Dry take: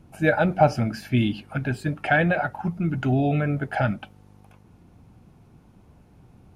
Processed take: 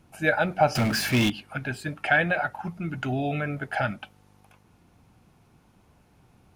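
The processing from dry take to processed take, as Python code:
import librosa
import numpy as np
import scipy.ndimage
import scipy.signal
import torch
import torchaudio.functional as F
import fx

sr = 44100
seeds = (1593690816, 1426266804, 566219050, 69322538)

y = fx.tilt_shelf(x, sr, db=-5.0, hz=670.0)
y = fx.power_curve(y, sr, exponent=0.5, at=(0.75, 1.3))
y = y * 10.0 ** (-3.0 / 20.0)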